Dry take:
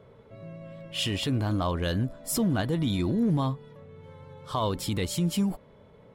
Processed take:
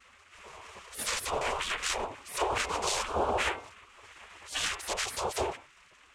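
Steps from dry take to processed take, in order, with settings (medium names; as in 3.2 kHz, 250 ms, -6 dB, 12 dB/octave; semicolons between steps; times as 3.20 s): noise-vocoded speech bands 4; de-hum 193 Hz, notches 19; spectral gate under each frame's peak -15 dB weak; trim +8 dB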